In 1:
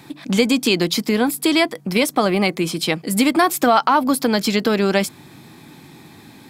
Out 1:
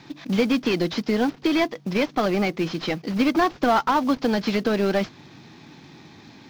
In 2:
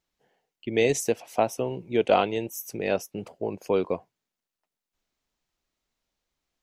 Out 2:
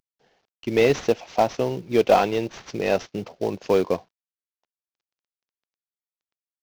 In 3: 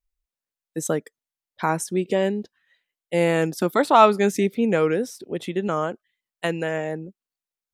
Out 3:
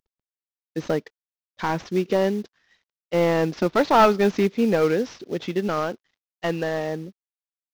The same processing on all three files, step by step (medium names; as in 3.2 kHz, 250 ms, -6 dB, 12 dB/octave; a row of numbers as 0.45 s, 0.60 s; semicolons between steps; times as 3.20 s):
CVSD coder 32 kbps; short-mantissa float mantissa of 4-bit; normalise loudness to -23 LUFS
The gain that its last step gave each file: -3.0 dB, +5.0 dB, +1.0 dB